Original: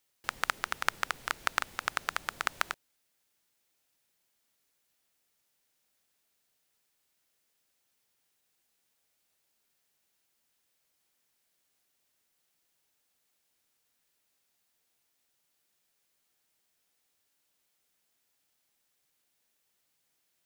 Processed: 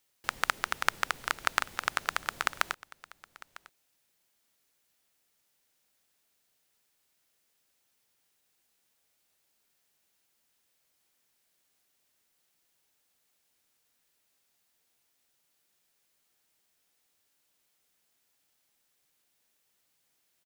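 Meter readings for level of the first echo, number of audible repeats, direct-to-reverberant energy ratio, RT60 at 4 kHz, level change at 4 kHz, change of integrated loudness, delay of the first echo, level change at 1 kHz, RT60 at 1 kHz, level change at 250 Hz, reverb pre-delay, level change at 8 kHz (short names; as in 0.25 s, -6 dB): -20.5 dB, 1, none, none, +2.0 dB, +2.0 dB, 0.951 s, +2.0 dB, none, +2.0 dB, none, +2.0 dB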